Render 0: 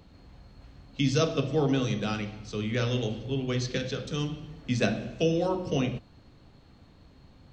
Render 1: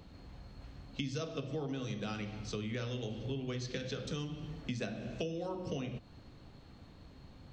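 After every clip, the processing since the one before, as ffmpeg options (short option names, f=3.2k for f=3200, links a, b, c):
-af "acompressor=threshold=-35dB:ratio=10"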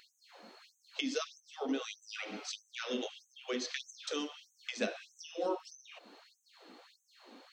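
-af "flanger=delay=0.4:depth=2.3:regen=-62:speed=1.7:shape=triangular,afftfilt=real='re*gte(b*sr/1024,200*pow(6100/200,0.5+0.5*sin(2*PI*1.6*pts/sr)))':imag='im*gte(b*sr/1024,200*pow(6100/200,0.5+0.5*sin(2*PI*1.6*pts/sr)))':win_size=1024:overlap=0.75,volume=10dB"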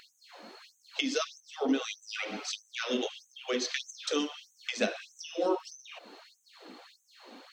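-af "aphaser=in_gain=1:out_gain=1:delay=3.5:decay=0.28:speed=1.2:type=triangular,volume=5.5dB"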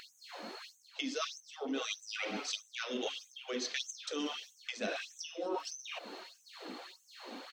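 -filter_complex "[0:a]areverse,acompressor=threshold=-39dB:ratio=6,areverse,asplit=2[a][b];[b]adelay=681,lowpass=f=3.8k:p=1,volume=-23.5dB,asplit=2[c][d];[d]adelay=681,lowpass=f=3.8k:p=1,volume=0.32[e];[a][c][e]amix=inputs=3:normalize=0,volume=4dB"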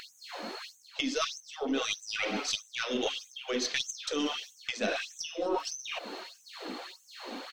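-af "aeval=exprs='0.0891*(cos(1*acos(clip(val(0)/0.0891,-1,1)))-cos(1*PI/2))+0.0112*(cos(2*acos(clip(val(0)/0.0891,-1,1)))-cos(2*PI/2))':c=same,volume=6dB"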